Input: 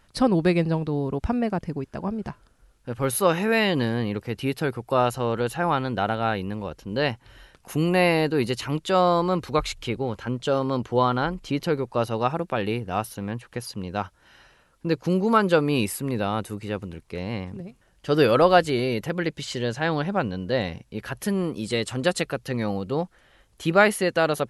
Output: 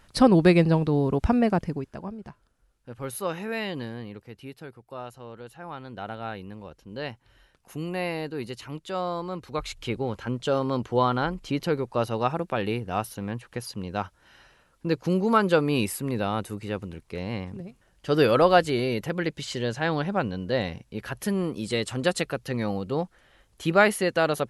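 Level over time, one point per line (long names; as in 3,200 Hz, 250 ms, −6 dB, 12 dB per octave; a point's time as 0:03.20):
0:01.57 +3 dB
0:02.18 −9.5 dB
0:03.71 −9.5 dB
0:04.77 −17 dB
0:05.59 −17 dB
0:06.14 −10 dB
0:09.43 −10 dB
0:09.91 −1.5 dB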